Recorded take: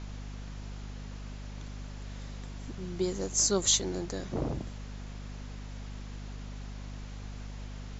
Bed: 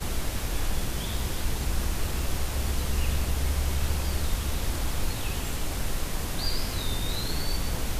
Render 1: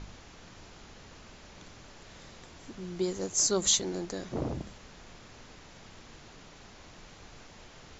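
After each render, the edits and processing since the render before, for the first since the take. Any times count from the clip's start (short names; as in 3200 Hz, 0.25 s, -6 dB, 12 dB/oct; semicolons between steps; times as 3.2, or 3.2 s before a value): de-hum 50 Hz, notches 5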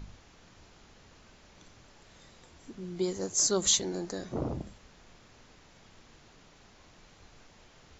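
noise print and reduce 6 dB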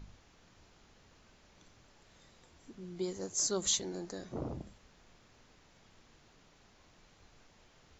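gain -6 dB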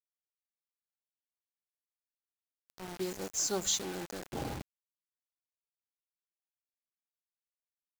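small resonant body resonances 810/1500 Hz, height 14 dB, ringing for 75 ms; bit-crush 7-bit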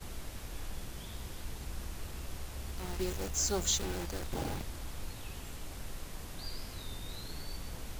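add bed -13.5 dB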